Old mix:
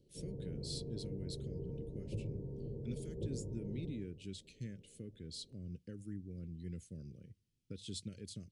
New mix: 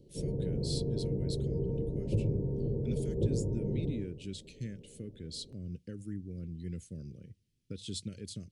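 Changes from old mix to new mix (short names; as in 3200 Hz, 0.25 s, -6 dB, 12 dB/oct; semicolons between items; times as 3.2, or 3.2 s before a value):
speech +5.0 dB; background +11.0 dB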